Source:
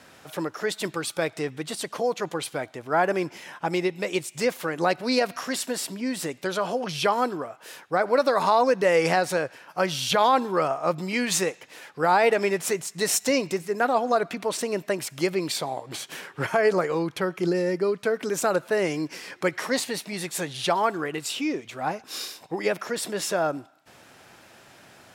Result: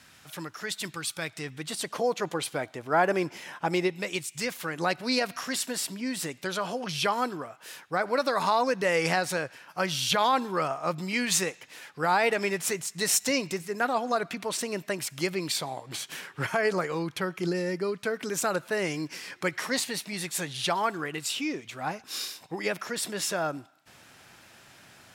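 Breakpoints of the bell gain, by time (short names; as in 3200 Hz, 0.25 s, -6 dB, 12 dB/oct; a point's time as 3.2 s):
bell 500 Hz 2.2 oct
1.35 s -13.5 dB
1.94 s -1.5 dB
3.85 s -1.5 dB
4.29 s -13.5 dB
4.79 s -6.5 dB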